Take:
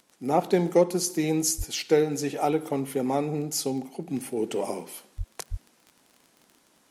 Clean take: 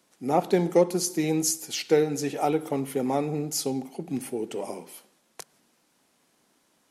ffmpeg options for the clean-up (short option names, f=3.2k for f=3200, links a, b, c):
-filter_complex "[0:a]adeclick=t=4,asplit=3[a][b][c];[a]afade=t=out:st=1.57:d=0.02[d];[b]highpass=f=140:w=0.5412,highpass=f=140:w=1.3066,afade=t=in:st=1.57:d=0.02,afade=t=out:st=1.69:d=0.02[e];[c]afade=t=in:st=1.69:d=0.02[f];[d][e][f]amix=inputs=3:normalize=0,asplit=3[g][h][i];[g]afade=t=out:st=5.17:d=0.02[j];[h]highpass=f=140:w=0.5412,highpass=f=140:w=1.3066,afade=t=in:st=5.17:d=0.02,afade=t=out:st=5.29:d=0.02[k];[i]afade=t=in:st=5.29:d=0.02[l];[j][k][l]amix=inputs=3:normalize=0,asplit=3[m][n][o];[m]afade=t=out:st=5.5:d=0.02[p];[n]highpass=f=140:w=0.5412,highpass=f=140:w=1.3066,afade=t=in:st=5.5:d=0.02,afade=t=out:st=5.62:d=0.02[q];[o]afade=t=in:st=5.62:d=0.02[r];[p][q][r]amix=inputs=3:normalize=0,asetnsamples=n=441:p=0,asendcmd='4.37 volume volume -4dB',volume=0dB"